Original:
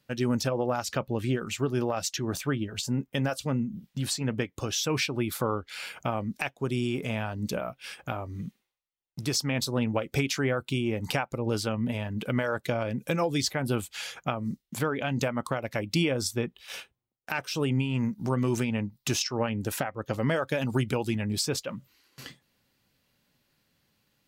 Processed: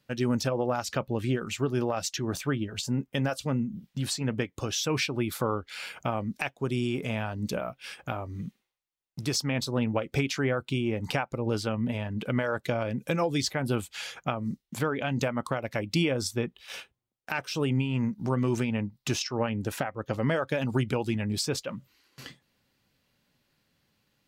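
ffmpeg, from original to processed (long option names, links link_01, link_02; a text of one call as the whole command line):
ffmpeg -i in.wav -af "asetnsamples=nb_out_samples=441:pad=0,asendcmd='9.42 lowpass f 4900;12.54 lowpass f 8000;17.79 lowpass f 4900;21.17 lowpass f 8200',lowpass=frequency=10000:poles=1" out.wav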